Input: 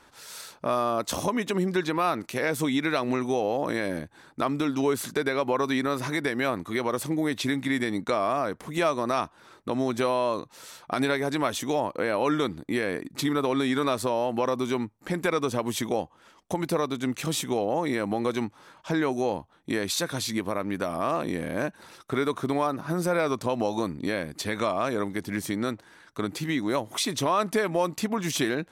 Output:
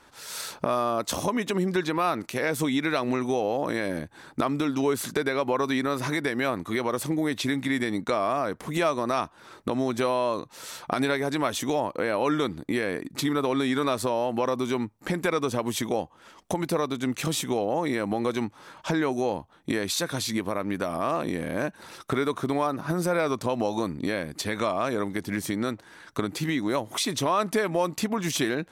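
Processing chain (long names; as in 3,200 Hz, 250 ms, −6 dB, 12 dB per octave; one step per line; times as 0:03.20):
camcorder AGC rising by 16 dB per second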